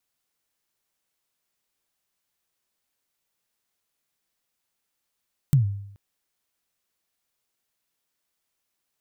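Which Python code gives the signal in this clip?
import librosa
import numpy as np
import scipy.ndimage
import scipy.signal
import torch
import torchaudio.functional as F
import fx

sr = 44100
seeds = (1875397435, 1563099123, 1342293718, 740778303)

y = fx.drum_kick(sr, seeds[0], length_s=0.43, level_db=-11.5, start_hz=150.0, end_hz=100.0, sweep_ms=121.0, decay_s=0.74, click=True)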